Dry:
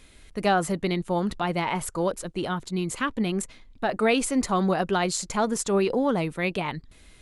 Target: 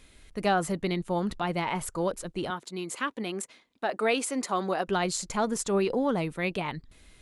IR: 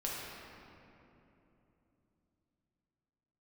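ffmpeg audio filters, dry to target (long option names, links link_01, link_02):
-filter_complex "[0:a]asettb=1/sr,asplit=3[link_01][link_02][link_03];[link_01]atrim=end=2.504[link_04];[link_02]atrim=start=2.5:end=4.88,asetpts=PTS-STARTPTS,afade=type=in:duration=0.004:curve=qsin,afade=type=out:start_time=2.376:duration=0.004:curve=qsin,highpass=300[link_05];[link_03]atrim=start=4.876[link_06];[link_04][link_05]acrossfade=duration=0.004:curve1=hsin:curve2=qsin[link_07];[link_07][link_06]acrossfade=duration=0.004:curve1=qsin:curve2=hsin,volume=-3dB"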